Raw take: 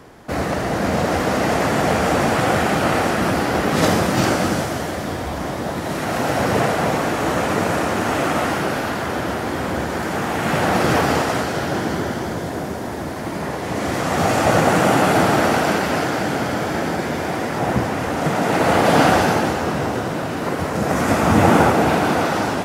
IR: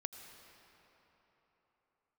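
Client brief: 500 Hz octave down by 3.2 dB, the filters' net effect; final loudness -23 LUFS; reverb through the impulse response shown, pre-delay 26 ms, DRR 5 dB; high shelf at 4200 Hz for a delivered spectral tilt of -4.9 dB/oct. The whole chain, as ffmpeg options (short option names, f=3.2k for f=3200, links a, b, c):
-filter_complex "[0:a]equalizer=f=500:t=o:g=-4,highshelf=f=4.2k:g=-8,asplit=2[a][b];[1:a]atrim=start_sample=2205,adelay=26[c];[b][c]afir=irnorm=-1:irlink=0,volume=-3dB[d];[a][d]amix=inputs=2:normalize=0,volume=-3dB"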